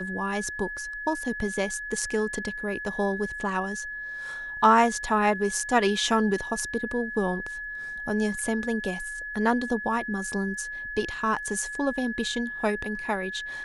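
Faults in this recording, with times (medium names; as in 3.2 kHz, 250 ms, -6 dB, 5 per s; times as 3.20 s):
whine 1.7 kHz -33 dBFS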